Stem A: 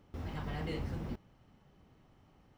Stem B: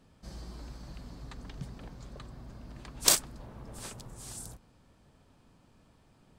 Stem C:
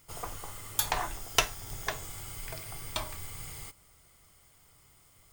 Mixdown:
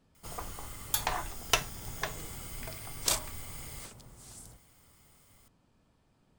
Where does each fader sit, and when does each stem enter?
-13.0, -6.5, -1.5 dB; 1.50, 0.00, 0.15 s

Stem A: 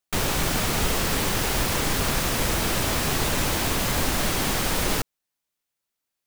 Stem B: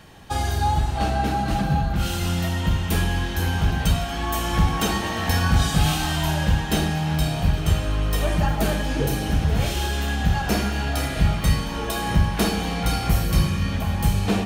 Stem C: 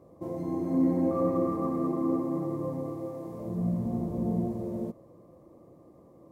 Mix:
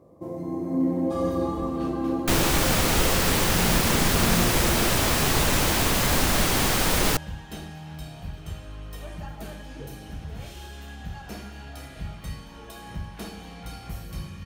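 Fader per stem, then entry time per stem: +2.0, -16.0, +1.0 dB; 2.15, 0.80, 0.00 s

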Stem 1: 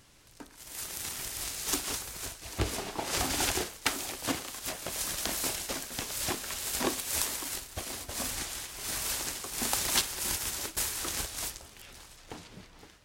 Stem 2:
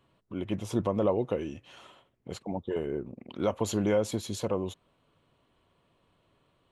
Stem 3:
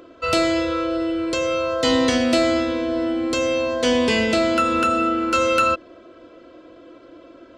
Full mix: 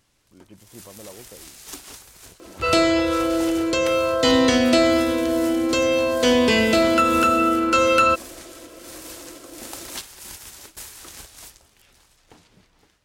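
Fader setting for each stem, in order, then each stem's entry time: -6.5, -16.0, +1.5 dB; 0.00, 0.00, 2.40 s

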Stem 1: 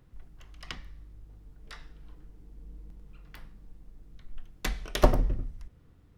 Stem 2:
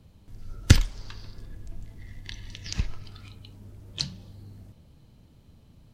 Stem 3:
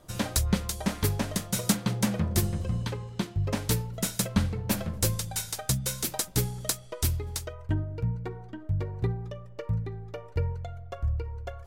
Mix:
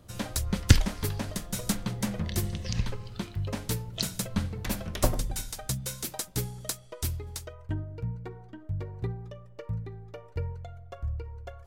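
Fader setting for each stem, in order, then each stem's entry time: -5.5, -2.0, -4.5 dB; 0.00, 0.00, 0.00 s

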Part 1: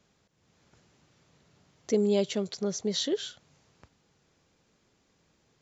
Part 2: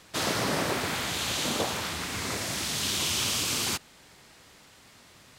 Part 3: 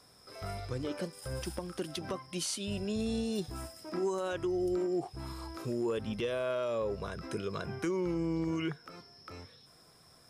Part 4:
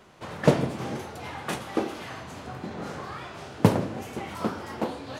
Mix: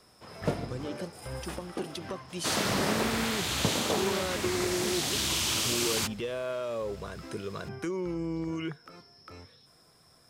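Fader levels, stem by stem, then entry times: -11.5, -1.0, -0.5, -11.0 dB; 2.00, 2.30, 0.00, 0.00 s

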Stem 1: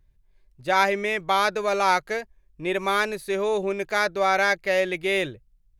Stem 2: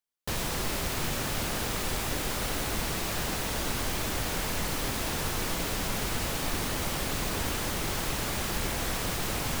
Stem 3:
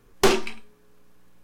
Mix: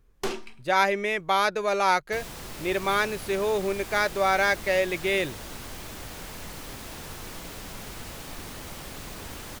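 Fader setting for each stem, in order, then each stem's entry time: -1.5, -8.5, -12.0 dB; 0.00, 1.85, 0.00 s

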